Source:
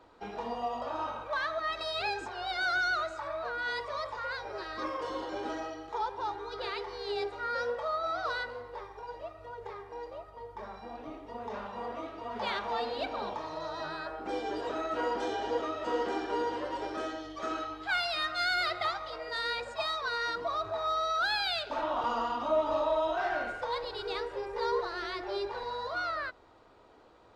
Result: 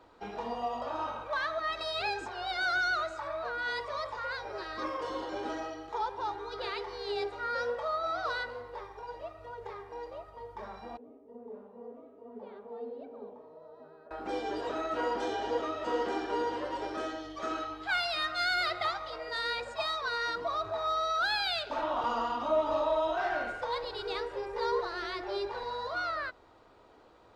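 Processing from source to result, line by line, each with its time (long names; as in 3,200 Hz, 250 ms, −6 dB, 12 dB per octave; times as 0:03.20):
0:10.97–0:14.11: pair of resonant band-passes 330 Hz, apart 0.77 octaves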